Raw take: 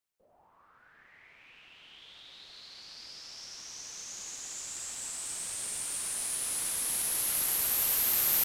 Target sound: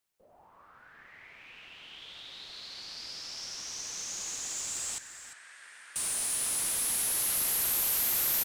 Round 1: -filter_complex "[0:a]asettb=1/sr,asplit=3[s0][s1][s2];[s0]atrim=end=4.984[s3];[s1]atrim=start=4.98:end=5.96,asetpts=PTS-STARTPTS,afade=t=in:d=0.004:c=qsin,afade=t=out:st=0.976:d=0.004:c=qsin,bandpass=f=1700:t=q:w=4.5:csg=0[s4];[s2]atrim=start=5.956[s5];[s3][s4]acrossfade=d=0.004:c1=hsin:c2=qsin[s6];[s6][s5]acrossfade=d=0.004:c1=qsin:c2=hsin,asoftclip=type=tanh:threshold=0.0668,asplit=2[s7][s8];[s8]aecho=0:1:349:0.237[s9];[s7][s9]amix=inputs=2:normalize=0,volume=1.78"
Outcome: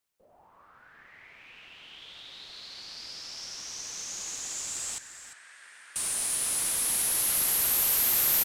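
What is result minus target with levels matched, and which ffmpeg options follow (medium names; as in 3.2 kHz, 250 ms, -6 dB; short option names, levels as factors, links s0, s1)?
saturation: distortion -7 dB
-filter_complex "[0:a]asettb=1/sr,asplit=3[s0][s1][s2];[s0]atrim=end=4.984[s3];[s1]atrim=start=4.98:end=5.96,asetpts=PTS-STARTPTS,afade=t=in:d=0.004:c=qsin,afade=t=out:st=0.976:d=0.004:c=qsin,bandpass=f=1700:t=q:w=4.5:csg=0[s4];[s2]atrim=start=5.956[s5];[s3][s4]acrossfade=d=0.004:c1=hsin:c2=qsin[s6];[s6][s5]acrossfade=d=0.004:c1=qsin:c2=hsin,asoftclip=type=tanh:threshold=0.0282,asplit=2[s7][s8];[s8]aecho=0:1:349:0.237[s9];[s7][s9]amix=inputs=2:normalize=0,volume=1.78"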